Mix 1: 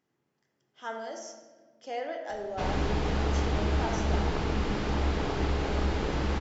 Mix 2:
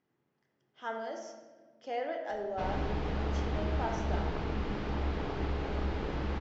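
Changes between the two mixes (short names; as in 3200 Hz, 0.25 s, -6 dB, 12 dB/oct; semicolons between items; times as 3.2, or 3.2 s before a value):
background -5.0 dB; master: add air absorption 140 m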